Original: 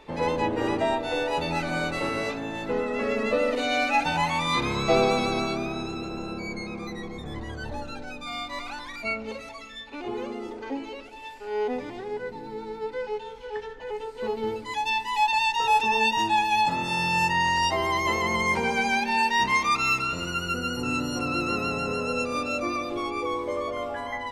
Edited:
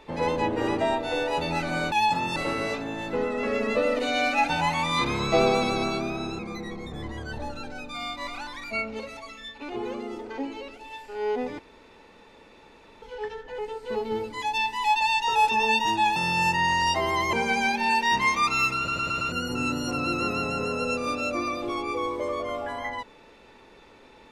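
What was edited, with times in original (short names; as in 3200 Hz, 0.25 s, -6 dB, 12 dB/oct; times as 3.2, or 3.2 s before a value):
5.95–6.71 cut
11.91–13.34 room tone
16.48–16.92 move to 1.92
18.09–18.61 cut
20.05 stutter in place 0.11 s, 5 plays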